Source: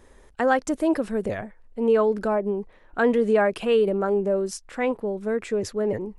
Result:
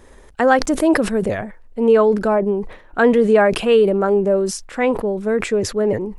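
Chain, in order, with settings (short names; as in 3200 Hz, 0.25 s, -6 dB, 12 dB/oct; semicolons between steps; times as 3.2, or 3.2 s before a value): sustainer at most 110 dB/s; gain +6.5 dB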